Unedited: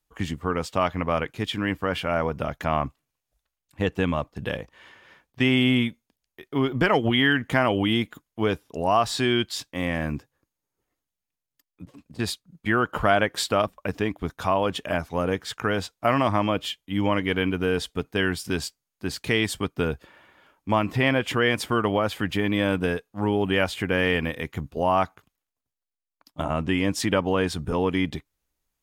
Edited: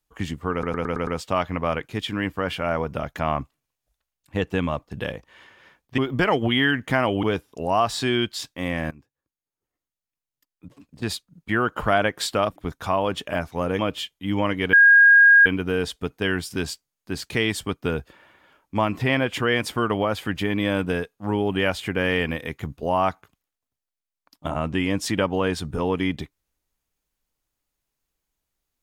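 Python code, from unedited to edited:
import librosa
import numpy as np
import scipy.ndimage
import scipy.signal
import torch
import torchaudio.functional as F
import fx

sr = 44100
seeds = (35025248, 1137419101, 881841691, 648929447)

y = fx.edit(x, sr, fx.stutter(start_s=0.52, slice_s=0.11, count=6),
    fx.cut(start_s=5.43, length_s=1.17),
    fx.cut(start_s=7.85, length_s=0.55),
    fx.fade_in_from(start_s=10.08, length_s=2.2, floor_db=-21.0),
    fx.cut(start_s=13.73, length_s=0.41),
    fx.cut(start_s=15.37, length_s=1.09),
    fx.insert_tone(at_s=17.4, length_s=0.73, hz=1630.0, db=-9.0), tone=tone)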